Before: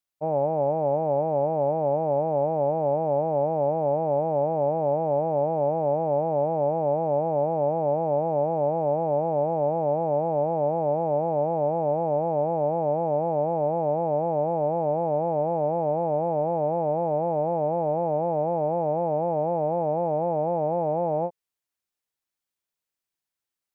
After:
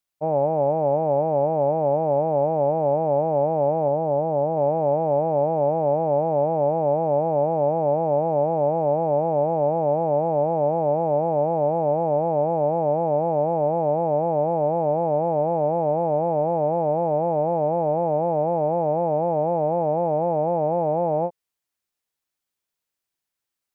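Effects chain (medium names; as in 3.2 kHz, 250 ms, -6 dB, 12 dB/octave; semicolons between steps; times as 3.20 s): 3.88–4.57 s: distance through air 400 m; trim +3 dB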